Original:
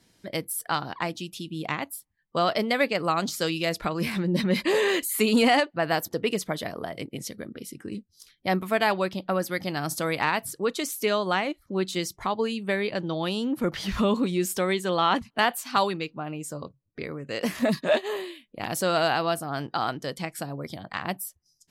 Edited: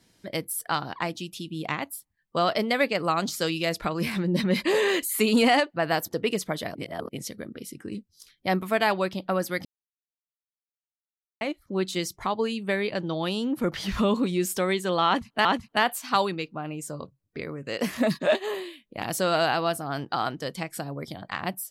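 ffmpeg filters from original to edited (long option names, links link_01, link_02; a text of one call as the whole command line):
ffmpeg -i in.wav -filter_complex "[0:a]asplit=6[link_01][link_02][link_03][link_04][link_05][link_06];[link_01]atrim=end=6.752[link_07];[link_02]atrim=start=6.748:end=7.092,asetpts=PTS-STARTPTS,areverse[link_08];[link_03]atrim=start=7.088:end=9.65,asetpts=PTS-STARTPTS,afade=type=out:start_time=2.558:duration=0.004:curve=hsin[link_09];[link_04]atrim=start=9.65:end=11.41,asetpts=PTS-STARTPTS,volume=0[link_10];[link_05]atrim=start=11.41:end=15.452,asetpts=PTS-STARTPTS,afade=type=in:duration=0.004:curve=hsin[link_11];[link_06]atrim=start=15.068[link_12];[link_07][link_08]acrossfade=duration=0.004:curve1=hsin:curve2=hsin[link_13];[link_09][link_10][link_11]concat=n=3:v=0:a=1[link_14];[link_13][link_14]acrossfade=duration=0.004:curve1=hsin:curve2=hsin[link_15];[link_15][link_12]acrossfade=duration=0.004:curve1=hsin:curve2=hsin" out.wav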